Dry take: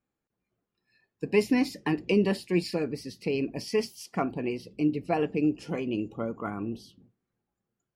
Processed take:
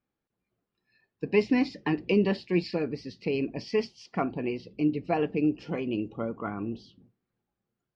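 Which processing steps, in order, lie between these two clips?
low-pass 4.8 kHz 24 dB/octave

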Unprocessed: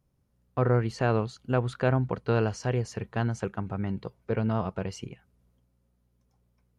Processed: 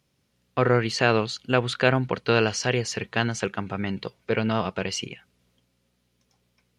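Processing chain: frequency weighting D; trim +5 dB

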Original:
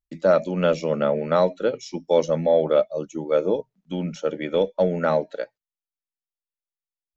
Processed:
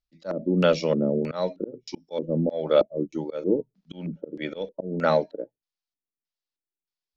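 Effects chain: LFO low-pass square 1.6 Hz 330–4800 Hz; slow attack 266 ms

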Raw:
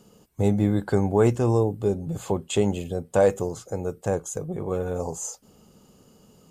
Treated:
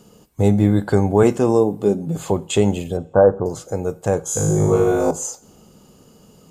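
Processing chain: 1.23–2.18 s: resonant low shelf 130 Hz -10.5 dB, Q 1.5; 2.97–3.46 s: steep low-pass 1.6 kHz 96 dB/octave; 4.25–5.11 s: flutter echo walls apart 3.3 m, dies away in 1.2 s; reverberation, pre-delay 3 ms, DRR 14 dB; trim +5.5 dB

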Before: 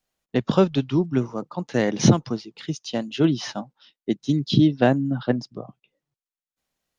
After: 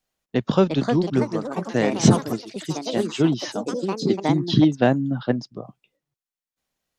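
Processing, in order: ever faster or slower copies 425 ms, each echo +4 st, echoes 3, each echo -6 dB

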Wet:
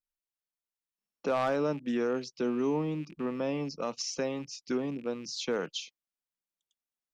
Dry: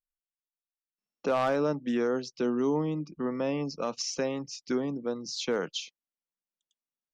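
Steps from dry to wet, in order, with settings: rattle on loud lows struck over -45 dBFS, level -41 dBFS; trim -2 dB

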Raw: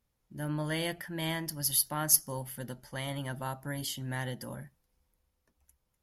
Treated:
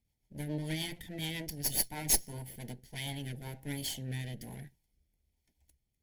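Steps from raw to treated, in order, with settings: comb filter that takes the minimum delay 0.91 ms; Butterworth band-stop 1.2 kHz, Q 1.5; rotary cabinet horn 7 Hz, later 1.2 Hz, at 2.11 s; trim +1.5 dB

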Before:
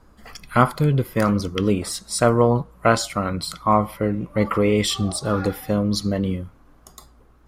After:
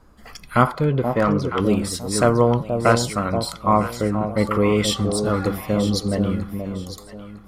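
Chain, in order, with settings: echo whose repeats swap between lows and highs 478 ms, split 830 Hz, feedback 52%, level -6 dB; 0.67–1.60 s: overdrive pedal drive 14 dB, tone 1 kHz, clips at -6 dBFS

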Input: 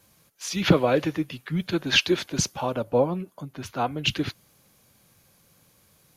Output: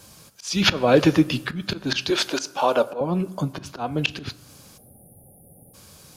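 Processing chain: 2.10–3.01 s: high-pass 440 Hz 12 dB/octave; 4.78–5.74 s: spectral selection erased 840–9200 Hz; graphic EQ with 31 bands 2 kHz -6 dB, 5 kHz +5 dB, 8 kHz +5 dB, 12.5 kHz -5 dB; in parallel at -2 dB: compression, threshold -26 dBFS, peak gain reduction 14 dB; on the sum: slow attack 332 ms; on a send at -15 dB: reverberation RT60 1.0 s, pre-delay 6 ms; on the sum: trim +7 dB

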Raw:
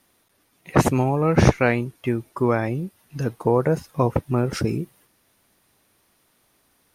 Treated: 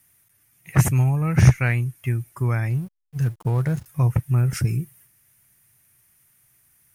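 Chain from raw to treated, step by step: ten-band graphic EQ 125 Hz +11 dB, 250 Hz -9 dB, 500 Hz -10 dB, 1 kHz -6 dB, 2 kHz +4 dB, 4 kHz -12 dB; 2.70–3.86 s: hysteresis with a dead band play -37 dBFS; treble shelf 4.2 kHz +11 dB; trim -2 dB

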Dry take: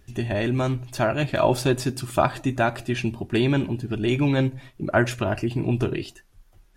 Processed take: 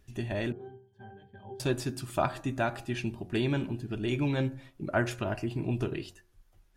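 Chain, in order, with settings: 0.52–1.60 s: pitch-class resonator G, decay 0.31 s; de-hum 89.97 Hz, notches 19; trim -7.5 dB

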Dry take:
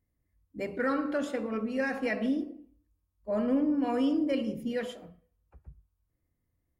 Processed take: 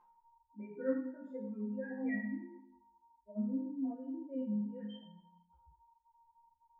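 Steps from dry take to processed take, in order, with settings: spectral contrast enhancement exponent 2.5; whistle 930 Hz -46 dBFS; peaking EQ 610 Hz -12 dB 0.32 oct; chord resonator F3 minor, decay 0.71 s; three-phase chorus; trim +16.5 dB

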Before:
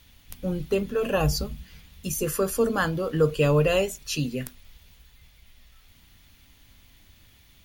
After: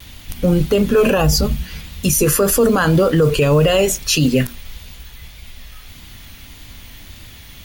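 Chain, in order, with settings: modulation noise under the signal 30 dB; vibrato 1.7 Hz 60 cents; loudness maximiser +22 dB; trim -5 dB

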